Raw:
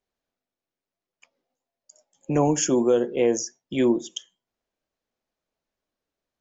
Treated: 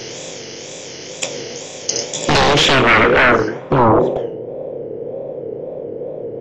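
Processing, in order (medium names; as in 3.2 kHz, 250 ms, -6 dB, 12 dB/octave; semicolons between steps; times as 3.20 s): spectral levelling over time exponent 0.4; graphic EQ 125/250/500/1000/2000/4000 Hz +12/-4/+9/-4/+8/+12 dB; wavefolder -13.5 dBFS; low-pass sweep 6.2 kHz -> 530 Hz, 2.09–4.43 s; wow and flutter 140 cents; trim +5.5 dB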